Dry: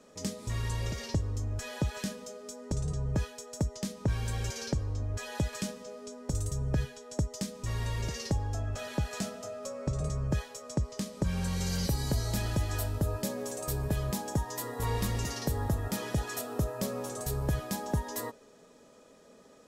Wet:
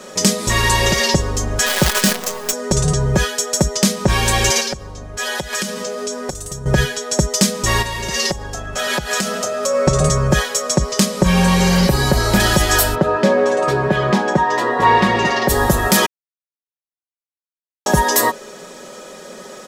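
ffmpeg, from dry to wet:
-filter_complex "[0:a]asettb=1/sr,asplit=3[a][b][c];[a]atrim=end=1.664[d];[b]atrim=start=1.66:end=2.53,asetpts=PTS-STARTPTS,afade=t=in:d=0.004:c=qsin,afade=t=out:st=0.866:d=0.004:c=qsin,acrusher=bits=7:dc=4:mix=0:aa=0.000001[e];[c]atrim=start=2.526[f];[d][e]acrossfade=d=0.004:c1=hsin:c2=qsin[g];[g][f]acrossfade=d=0.004:c1=qsin:c2=hsin,asettb=1/sr,asplit=3[h][i][j];[h]atrim=end=4.604[k];[i]atrim=start=4.6:end=6.66,asetpts=PTS-STARTPTS,afade=t=in:d=0.004:c=qsin,afade=t=out:st=2.056:d=0.004:c=qsin,acompressor=threshold=-41dB:ratio=16:attack=3.2:release=140:knee=1:detection=peak[l];[j]atrim=start=6.656[m];[k][l]acrossfade=d=0.004:c1=hsin:c2=qsin[n];[n][m]acrossfade=d=0.004:c1=qsin:c2=hsin,asplit=3[o][p][q];[o]afade=t=out:st=7.81:d=0.02[r];[p]acompressor=threshold=-38dB:ratio=10:attack=3.2:release=140:knee=1:detection=peak,afade=t=in:st=7.81:d=0.02,afade=t=out:st=9.73:d=0.02[s];[q]afade=t=in:st=9.73:d=0.02[t];[r][s][t]amix=inputs=3:normalize=0,asettb=1/sr,asplit=3[u][v][w];[u]atrim=end=11.054[x];[v]atrim=start=11.05:end=12.4,asetpts=PTS-STARTPTS,afade=t=in:d=0.004:c=qsin,afade=t=out:st=1.346:d=0.004:c=qsin,acrossover=split=2700[y][z];[z]acompressor=threshold=-49dB:ratio=4:attack=1:release=60[aa];[y][aa]amix=inputs=2:normalize=0[ab];[w]atrim=start=12.396[ac];[x][ab]acrossfade=d=0.004:c1=hsin:c2=qsin[ad];[ad][ac]acrossfade=d=0.004:c1=qsin:c2=hsin,asplit=3[ae][af][ag];[ae]afade=t=out:st=12.94:d=0.02[ah];[af]highpass=150,lowpass=2.4k,afade=t=in:st=12.94:d=0.02,afade=t=out:st=15.48:d=0.02[ai];[ag]afade=t=in:st=15.48:d=0.02[aj];[ah][ai][aj]amix=inputs=3:normalize=0,asplit=3[ak][al][am];[ak]atrim=end=16.06,asetpts=PTS-STARTPTS,afade=t=out:st=16.056:d=0.004:c=hsin[an];[al]atrim=start=16.06:end=17.86,asetpts=PTS-STARTPTS,volume=0[ao];[am]atrim=start=17.86,asetpts=PTS-STARTPTS,afade=t=in:d=0.004:c=hsin[ap];[an][ao][ap]concat=n=3:v=0:a=1,lowshelf=f=270:g=-10.5,aecho=1:1:5.4:0.59,alimiter=level_in=24.5dB:limit=-1dB:release=50:level=0:latency=1,volume=-1dB"

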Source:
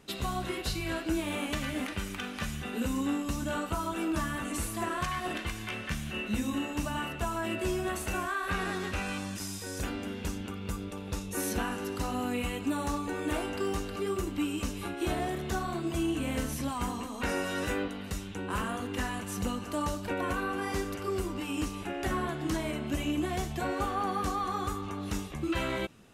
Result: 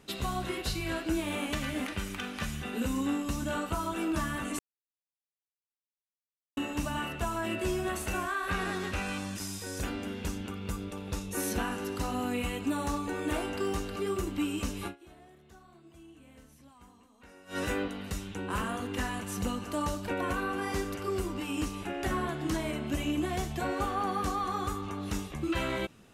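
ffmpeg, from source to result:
-filter_complex "[0:a]asplit=5[a][b][c][d][e];[a]atrim=end=4.59,asetpts=PTS-STARTPTS,afade=t=out:st=4.586:d=0.004:c=hsin[f];[b]atrim=start=4.59:end=6.57,asetpts=PTS-STARTPTS,volume=0[g];[c]atrim=start=6.57:end=14.99,asetpts=PTS-STARTPTS,afade=t=in:d=0.004:c=hsin,afade=t=out:st=8.3:d=0.12:c=qua:silence=0.0707946[h];[d]atrim=start=14.99:end=17.45,asetpts=PTS-STARTPTS,volume=-23dB[i];[e]atrim=start=17.45,asetpts=PTS-STARTPTS,afade=t=in:d=0.12:c=qua:silence=0.0707946[j];[f][g][h][i][j]concat=n=5:v=0:a=1"

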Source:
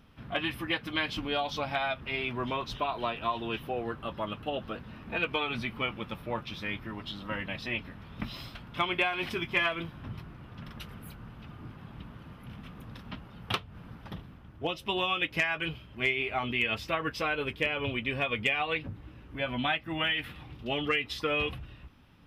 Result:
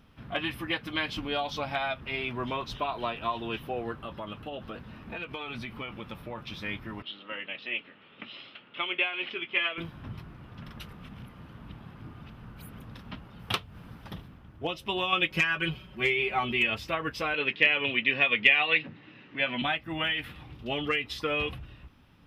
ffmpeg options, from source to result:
-filter_complex "[0:a]asettb=1/sr,asplit=3[a][b][c];[a]atrim=end=3.924[d];[b]atrim=start=3.92:end=6.5,asetpts=PTS-STARTPTS,afade=t=in:d=0.004:c=qsin,afade=t=out:st=2.576:d=0.004:c=qsin,acompressor=threshold=-34dB:ratio=4:attack=3.2:release=140:knee=1:detection=peak[e];[c]atrim=start=6.496[f];[d][e]acrossfade=d=0.004:c1=hsin:c2=qsin[g];[g][f]acrossfade=d=0.004:c1=qsin:c2=hsin,asettb=1/sr,asplit=3[h][i][j];[h]atrim=end=7.024[k];[i]atrim=start=7.02:end=9.78,asetpts=PTS-STARTPTS,afade=t=in:d=0.004:c=qsin,afade=t=out:st=2.756:d=0.004:c=qsin,highpass=420,equalizer=f=710:t=q:w=4:g=-7,equalizer=f=1k:t=q:w=4:g=-9,equalizer=f=1.6k:t=q:w=4:g=-4,equalizer=f=2.9k:t=q:w=4:g=6,lowpass=f=3.4k:w=0.5412,lowpass=f=3.4k:w=1.3066[l];[j]atrim=start=9.776[m];[k][l]acrossfade=d=0.004:c1=hsin:c2=qsin[n];[n][m]acrossfade=d=0.004:c1=qsin:c2=hsin,asettb=1/sr,asplit=3[o][p][q];[o]atrim=end=13.394[r];[p]atrim=start=13.39:end=14.28,asetpts=PTS-STARTPTS,afade=t=in:d=0.004:c=qsin,afade=t=out:st=0.886:d=0.004:c=qsin,highshelf=f=4.3k:g=6.5[s];[q]atrim=start=14.276[t];[r][s]acrossfade=d=0.004:c1=hsin:c2=qsin[u];[u][t]acrossfade=d=0.004:c1=qsin:c2=hsin,asettb=1/sr,asplit=3[v][w][x];[v]atrim=end=15.124[y];[w]atrim=start=15.12:end=16.7,asetpts=PTS-STARTPTS,afade=t=in:d=0.004:c=qsin,afade=t=out:st=1.576:d=0.004:c=qsin,aecho=1:1:5.4:0.97,atrim=end_sample=69678[z];[x]atrim=start=16.696[aa];[y][z]acrossfade=d=0.004:c1=hsin:c2=qsin[ab];[ab][aa]acrossfade=d=0.004:c1=qsin:c2=hsin,asettb=1/sr,asplit=3[ac][ad][ae];[ac]atrim=end=17.344[af];[ad]atrim=start=17.34:end=19.62,asetpts=PTS-STARTPTS,afade=t=in:d=0.004:c=qsin,afade=t=out:st=2.276:d=0.004:c=qsin,highpass=f=150:w=0.5412,highpass=f=150:w=1.3066,equalizer=f=1.9k:t=q:w=4:g=10,equalizer=f=2.7k:t=q:w=4:g=9,equalizer=f=3.9k:t=q:w=4:g=7,lowpass=f=5.9k:w=0.5412,lowpass=f=5.9k:w=1.3066[ag];[ae]atrim=start=19.616[ah];[af][ag]acrossfade=d=0.004:c1=hsin:c2=qsin[ai];[ai][ah]acrossfade=d=0.004:c1=qsin:c2=hsin,asplit=3[aj][ak][al];[aj]atrim=end=10.932[am];[ak]atrim=start=10.928:end=12.792,asetpts=PTS-STARTPTS,areverse[an];[al]atrim=start=12.788[ao];[am][an]acrossfade=d=0.004:c1=hsin:c2=hsin[ap];[ap][ao]acrossfade=d=0.004:c1=hsin:c2=hsin"

